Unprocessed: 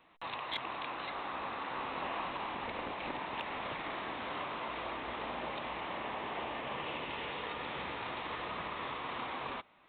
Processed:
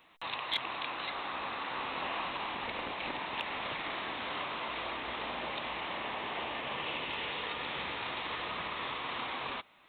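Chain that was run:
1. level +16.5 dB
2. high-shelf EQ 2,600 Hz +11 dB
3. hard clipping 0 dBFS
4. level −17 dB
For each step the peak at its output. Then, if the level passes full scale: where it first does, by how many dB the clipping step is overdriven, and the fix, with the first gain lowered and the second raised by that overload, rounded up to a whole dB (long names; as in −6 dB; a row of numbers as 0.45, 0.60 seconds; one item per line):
−10.0, −2.5, −2.5, −19.5 dBFS
no step passes full scale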